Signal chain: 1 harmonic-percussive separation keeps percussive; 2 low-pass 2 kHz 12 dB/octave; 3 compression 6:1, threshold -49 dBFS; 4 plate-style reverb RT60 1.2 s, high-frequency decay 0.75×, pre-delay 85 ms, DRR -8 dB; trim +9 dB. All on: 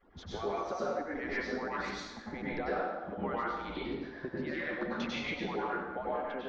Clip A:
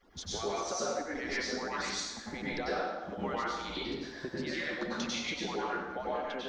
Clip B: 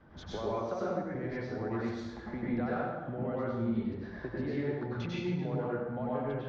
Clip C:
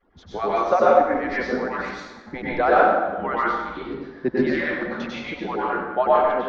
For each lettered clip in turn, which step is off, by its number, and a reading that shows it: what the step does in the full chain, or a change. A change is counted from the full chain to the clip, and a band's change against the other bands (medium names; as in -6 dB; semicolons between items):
2, 4 kHz band +8.0 dB; 1, 125 Hz band +14.0 dB; 3, mean gain reduction 9.0 dB